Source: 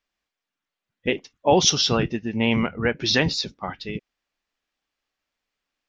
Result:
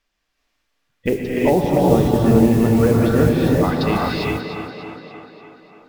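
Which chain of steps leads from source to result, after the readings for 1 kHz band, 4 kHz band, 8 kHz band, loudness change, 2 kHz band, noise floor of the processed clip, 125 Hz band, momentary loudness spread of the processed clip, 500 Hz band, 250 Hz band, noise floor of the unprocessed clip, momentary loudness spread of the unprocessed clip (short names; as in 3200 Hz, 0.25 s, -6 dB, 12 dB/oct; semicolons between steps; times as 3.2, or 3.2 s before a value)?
+4.5 dB, -9.5 dB, n/a, +5.0 dB, -0.5 dB, -73 dBFS, +11.0 dB, 16 LU, +8.0 dB, +10.0 dB, under -85 dBFS, 15 LU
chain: treble ducked by the level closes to 650 Hz, closed at -19.5 dBFS; low shelf 62 Hz +9 dB; in parallel at -1 dB: negative-ratio compressor -24 dBFS; on the sum: modulation noise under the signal 25 dB; on a send: tape echo 0.292 s, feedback 65%, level -7 dB, low-pass 5700 Hz; on the sum: non-linear reverb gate 0.43 s rising, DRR -3.5 dB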